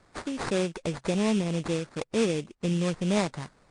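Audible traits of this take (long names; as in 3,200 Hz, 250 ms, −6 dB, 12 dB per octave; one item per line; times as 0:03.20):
aliases and images of a low sample rate 3,000 Hz, jitter 20%
MP3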